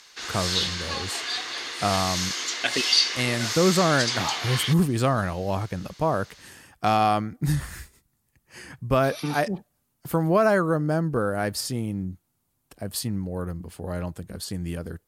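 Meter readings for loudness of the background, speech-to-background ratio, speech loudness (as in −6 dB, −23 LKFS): −25.5 LKFS, −0.5 dB, −26.0 LKFS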